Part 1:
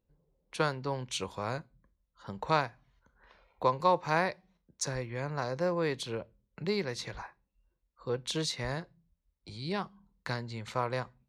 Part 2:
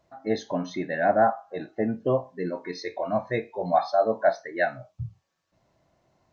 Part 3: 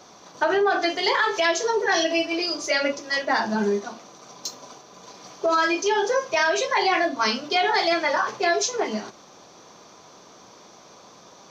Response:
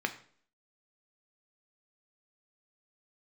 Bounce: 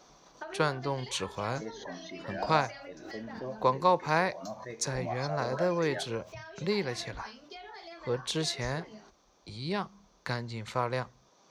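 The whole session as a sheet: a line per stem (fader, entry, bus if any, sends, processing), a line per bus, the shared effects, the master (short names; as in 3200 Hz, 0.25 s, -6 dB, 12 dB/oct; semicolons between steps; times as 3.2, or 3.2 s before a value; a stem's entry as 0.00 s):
+1.5 dB, 0.00 s, no send, dry
-16.0 dB, 1.35 s, no send, backwards sustainer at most 65 dB/s
-9.0 dB, 0.00 s, no send, compressor 6:1, threshold -26 dBFS, peak gain reduction 9 dB; auto duck -9 dB, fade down 1.00 s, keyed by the first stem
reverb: off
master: dry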